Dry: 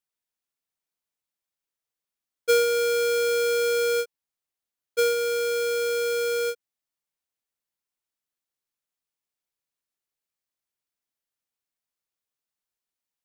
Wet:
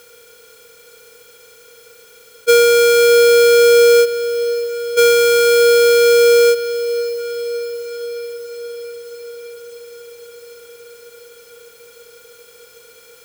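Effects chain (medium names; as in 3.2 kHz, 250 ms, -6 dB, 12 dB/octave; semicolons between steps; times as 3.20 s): spectral levelling over time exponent 0.4; echo that smears into a reverb 566 ms, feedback 67%, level -13 dB; trim +8.5 dB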